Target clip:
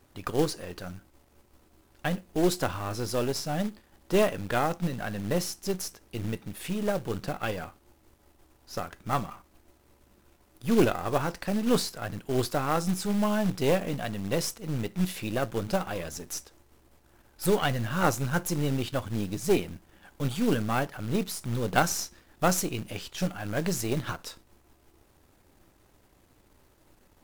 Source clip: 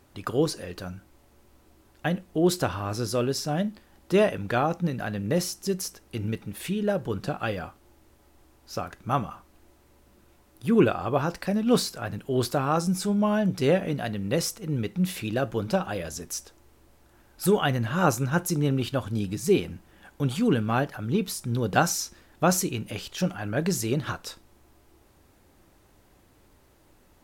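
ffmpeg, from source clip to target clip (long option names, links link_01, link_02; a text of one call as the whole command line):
ffmpeg -i in.wav -af "aeval=exprs='if(lt(val(0),0),0.447*val(0),val(0))':channel_layout=same,acrusher=bits=4:mode=log:mix=0:aa=0.000001" out.wav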